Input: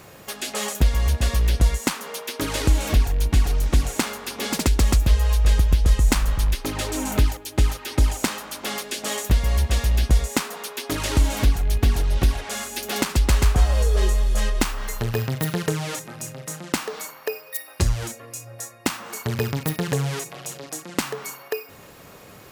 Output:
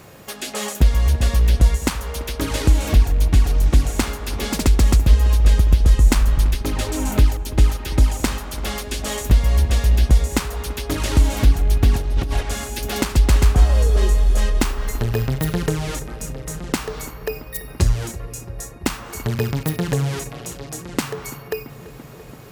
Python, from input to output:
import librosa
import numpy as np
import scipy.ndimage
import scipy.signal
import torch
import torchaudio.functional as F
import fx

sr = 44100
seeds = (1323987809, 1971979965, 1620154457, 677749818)

y = fx.low_shelf(x, sr, hz=400.0, db=4.0)
y = fx.over_compress(y, sr, threshold_db=-20.0, ratio=-1.0, at=(11.93, 12.43))
y = fx.echo_filtered(y, sr, ms=337, feedback_pct=85, hz=2100.0, wet_db=-17)